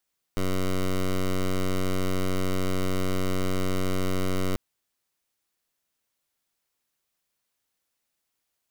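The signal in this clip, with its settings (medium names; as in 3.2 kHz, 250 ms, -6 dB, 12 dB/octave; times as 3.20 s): pulse 93.5 Hz, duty 11% -24.5 dBFS 4.19 s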